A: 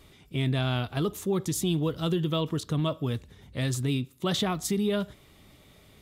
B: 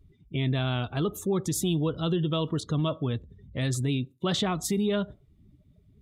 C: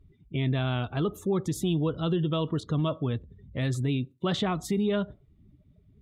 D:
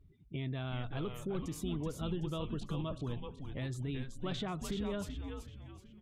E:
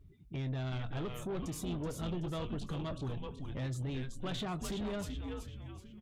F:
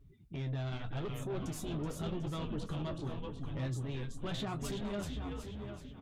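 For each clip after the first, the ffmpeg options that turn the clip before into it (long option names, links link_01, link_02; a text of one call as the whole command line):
ffmpeg -i in.wav -filter_complex "[0:a]afftdn=noise_reduction=28:noise_floor=-46,asplit=2[link_01][link_02];[link_02]alimiter=level_in=1dB:limit=-24dB:level=0:latency=1:release=81,volume=-1dB,volume=-1dB[link_03];[link_01][link_03]amix=inputs=2:normalize=0,volume=-3dB" out.wav
ffmpeg -i in.wav -af "bass=frequency=250:gain=0,treble=frequency=4000:gain=-9" out.wav
ffmpeg -i in.wav -filter_complex "[0:a]acompressor=threshold=-35dB:ratio=2,asplit=6[link_01][link_02][link_03][link_04][link_05][link_06];[link_02]adelay=378,afreqshift=-140,volume=-5dB[link_07];[link_03]adelay=756,afreqshift=-280,volume=-12.7dB[link_08];[link_04]adelay=1134,afreqshift=-420,volume=-20.5dB[link_09];[link_05]adelay=1512,afreqshift=-560,volume=-28.2dB[link_10];[link_06]adelay=1890,afreqshift=-700,volume=-36dB[link_11];[link_01][link_07][link_08][link_09][link_10][link_11]amix=inputs=6:normalize=0,volume=-5dB" out.wav
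ffmpeg -i in.wav -filter_complex "[0:a]asoftclip=type=tanh:threshold=-36.5dB,asplit=2[link_01][link_02];[link_02]adelay=23,volume=-14dB[link_03];[link_01][link_03]amix=inputs=2:normalize=0,volume=3.5dB" out.wav
ffmpeg -i in.wav -filter_complex "[0:a]asplit=2[link_01][link_02];[link_02]adelay=743,lowpass=frequency=2800:poles=1,volume=-8dB,asplit=2[link_03][link_04];[link_04]adelay=743,lowpass=frequency=2800:poles=1,volume=0.24,asplit=2[link_05][link_06];[link_06]adelay=743,lowpass=frequency=2800:poles=1,volume=0.24[link_07];[link_03][link_05][link_07]amix=inputs=3:normalize=0[link_08];[link_01][link_08]amix=inputs=2:normalize=0,flanger=delay=7:depth=7:regen=-39:speed=0.85:shape=sinusoidal,volume=3dB" out.wav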